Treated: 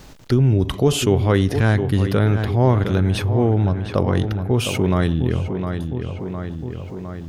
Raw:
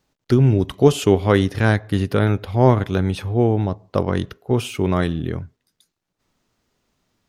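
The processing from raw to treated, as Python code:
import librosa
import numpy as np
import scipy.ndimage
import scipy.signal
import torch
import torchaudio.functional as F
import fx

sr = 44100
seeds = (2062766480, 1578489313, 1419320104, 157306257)

p1 = fx.low_shelf(x, sr, hz=94.0, db=9.0)
p2 = p1 + fx.echo_filtered(p1, sr, ms=709, feedback_pct=46, hz=3600.0, wet_db=-13, dry=0)
p3 = fx.env_flatten(p2, sr, amount_pct=50)
y = F.gain(torch.from_numpy(p3), -5.5).numpy()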